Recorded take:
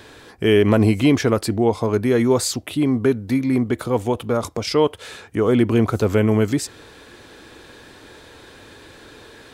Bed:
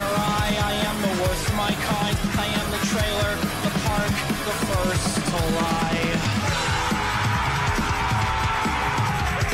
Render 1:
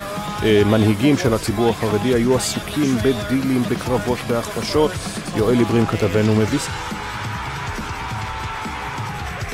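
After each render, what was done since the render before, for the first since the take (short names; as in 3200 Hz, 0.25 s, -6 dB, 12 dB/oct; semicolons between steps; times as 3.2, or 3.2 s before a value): add bed -4 dB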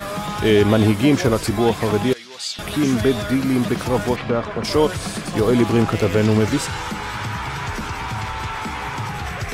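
2.13–2.59 band-pass 4200 Hz, Q 1.9; 4.15–4.63 LPF 4000 Hz -> 2000 Hz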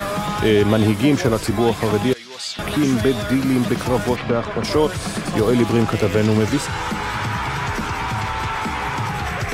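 three-band squash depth 40%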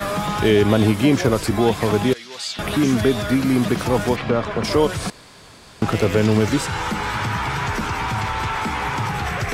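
5.1–5.82 room tone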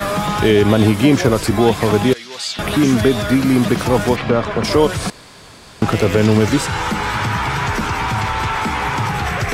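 gain +4 dB; limiter -2 dBFS, peak gain reduction 2 dB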